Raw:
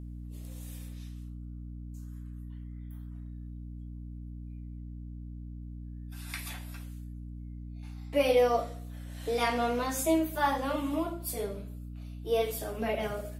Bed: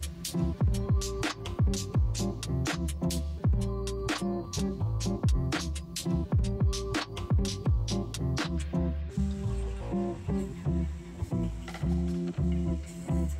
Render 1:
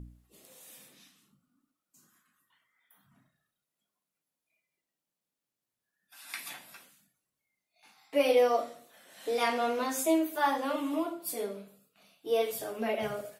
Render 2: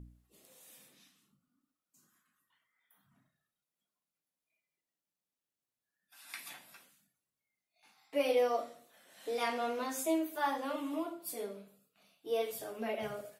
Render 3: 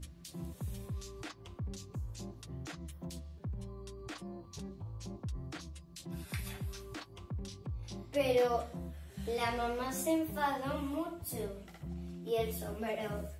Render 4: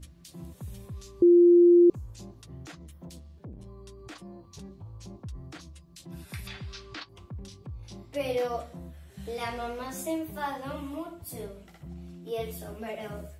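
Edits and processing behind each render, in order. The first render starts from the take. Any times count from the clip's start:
de-hum 60 Hz, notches 5
trim -5.5 dB
add bed -14 dB
1.22–1.90 s: bleep 348 Hz -13.5 dBFS; 2.74–3.67 s: transformer saturation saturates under 190 Hz; 6.47–7.09 s: FFT filter 700 Hz 0 dB, 1.3 kHz +6 dB, 4.8 kHz +9 dB, 13 kHz -25 dB

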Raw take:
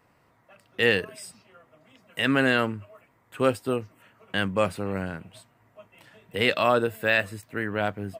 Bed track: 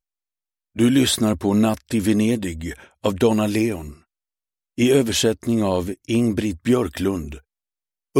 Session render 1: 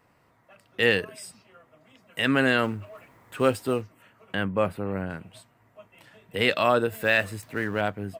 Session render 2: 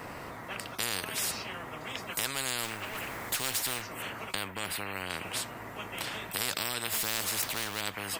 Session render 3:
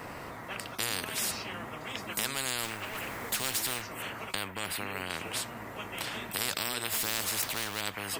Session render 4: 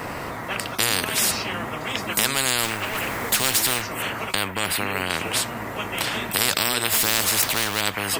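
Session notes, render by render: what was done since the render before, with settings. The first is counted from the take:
2.63–3.82 s: companding laws mixed up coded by mu; 4.35–5.10 s: peaking EQ 6.3 kHz -14 dB 1.8 oct; 6.92–7.81 s: companding laws mixed up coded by mu
compression 1.5:1, threshold -33 dBFS, peak gain reduction 6.5 dB; spectrum-flattening compressor 10:1
add bed track -31.5 dB
trim +11 dB; peak limiter -3 dBFS, peak gain reduction 1.5 dB

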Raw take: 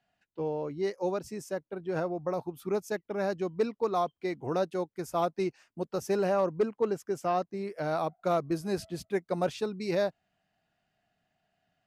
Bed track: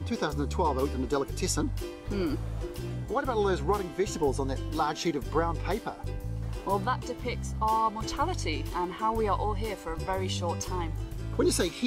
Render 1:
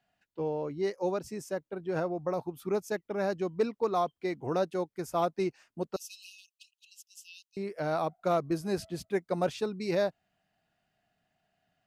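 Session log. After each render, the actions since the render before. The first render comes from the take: 5.96–7.57 s: brick-wall FIR high-pass 2.5 kHz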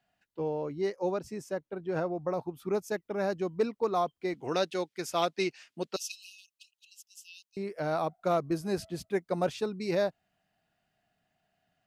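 0.87–2.73 s: treble shelf 6.4 kHz -6 dB; 4.34–6.12 s: frequency weighting D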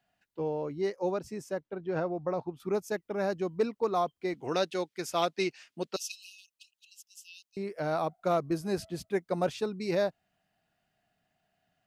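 1.60–2.60 s: low-pass 5.6 kHz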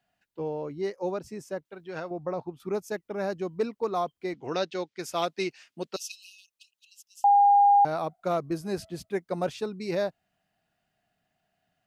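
1.65–2.11 s: tilt shelf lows -7.5 dB, about 1.4 kHz; 4.33–5.00 s: low-pass 6.5 kHz 24 dB/octave; 7.24–7.85 s: bleep 810 Hz -15 dBFS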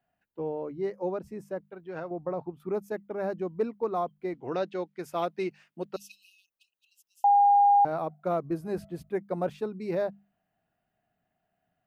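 peaking EQ 5.7 kHz -14.5 dB 2.2 oct; hum notches 50/100/150/200 Hz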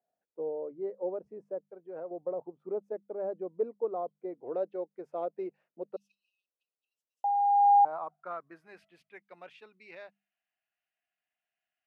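band-pass sweep 510 Hz -> 2.5 kHz, 7.34–8.86 s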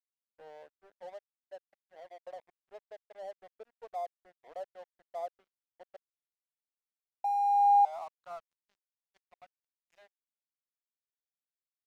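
ladder high-pass 640 Hz, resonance 65%; crossover distortion -54 dBFS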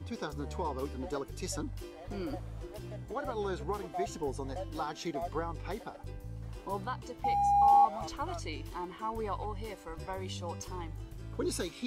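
add bed track -8.5 dB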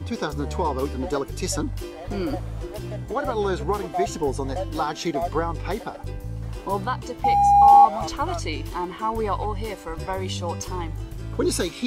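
trim +11 dB

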